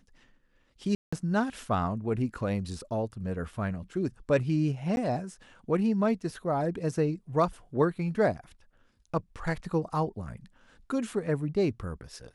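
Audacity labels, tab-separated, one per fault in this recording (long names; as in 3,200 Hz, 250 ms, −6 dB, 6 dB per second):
0.950000	1.120000	drop-out 175 ms
4.960000	4.970000	drop-out 11 ms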